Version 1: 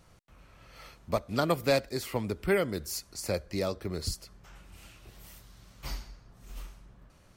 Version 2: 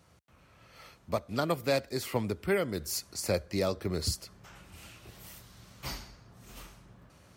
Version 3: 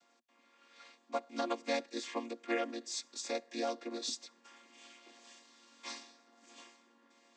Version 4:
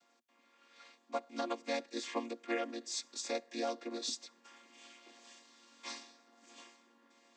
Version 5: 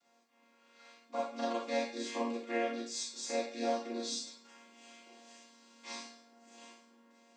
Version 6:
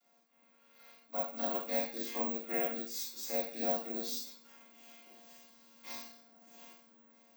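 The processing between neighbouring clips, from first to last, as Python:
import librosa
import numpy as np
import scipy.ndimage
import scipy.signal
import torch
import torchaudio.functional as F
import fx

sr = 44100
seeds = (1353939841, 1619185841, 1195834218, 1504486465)

y1 = scipy.signal.sosfilt(scipy.signal.butter(4, 64.0, 'highpass', fs=sr, output='sos'), x)
y1 = fx.rider(y1, sr, range_db=3, speed_s=0.5)
y2 = fx.chord_vocoder(y1, sr, chord='minor triad', root=58)
y2 = fx.highpass(y2, sr, hz=840.0, slope=6)
y2 = fx.high_shelf(y2, sr, hz=2700.0, db=10.0)
y3 = fx.rider(y2, sr, range_db=10, speed_s=0.5)
y4 = fx.rev_schroeder(y3, sr, rt60_s=0.47, comb_ms=30, drr_db=-6.0)
y4 = F.gain(torch.from_numpy(y4), -5.0).numpy()
y5 = (np.kron(scipy.signal.resample_poly(y4, 1, 2), np.eye(2)[0]) * 2)[:len(y4)]
y5 = F.gain(torch.from_numpy(y5), -3.0).numpy()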